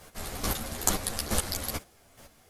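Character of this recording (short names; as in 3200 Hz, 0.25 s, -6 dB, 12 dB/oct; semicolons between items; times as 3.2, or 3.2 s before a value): a quantiser's noise floor 12-bit, dither triangular; chopped level 2.3 Hz, depth 65%, duty 20%; a shimmering, thickened sound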